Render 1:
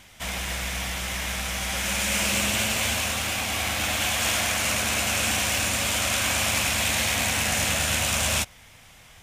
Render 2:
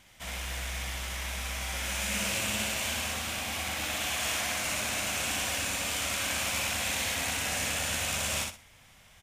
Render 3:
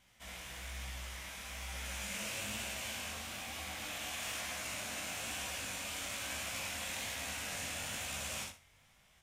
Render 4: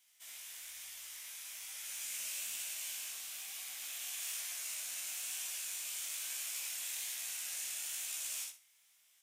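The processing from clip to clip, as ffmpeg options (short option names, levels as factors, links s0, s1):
-af "aecho=1:1:62|124|186|248:0.708|0.177|0.0442|0.0111,volume=0.376"
-af "flanger=delay=15.5:depth=7.4:speed=1.1,volume=0.473"
-af "aderivative,volume=1.41"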